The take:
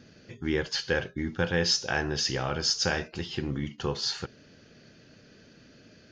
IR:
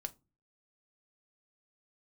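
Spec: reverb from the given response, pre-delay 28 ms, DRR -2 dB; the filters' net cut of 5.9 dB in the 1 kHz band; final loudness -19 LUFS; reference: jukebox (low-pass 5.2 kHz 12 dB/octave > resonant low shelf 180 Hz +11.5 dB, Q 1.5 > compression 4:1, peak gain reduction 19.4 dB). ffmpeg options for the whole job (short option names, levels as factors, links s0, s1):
-filter_complex "[0:a]equalizer=f=1000:t=o:g=-8,asplit=2[s0][s1];[1:a]atrim=start_sample=2205,adelay=28[s2];[s1][s2]afir=irnorm=-1:irlink=0,volume=1.58[s3];[s0][s3]amix=inputs=2:normalize=0,lowpass=5200,lowshelf=f=180:t=q:w=1.5:g=11.5,acompressor=threshold=0.0158:ratio=4,volume=8.91"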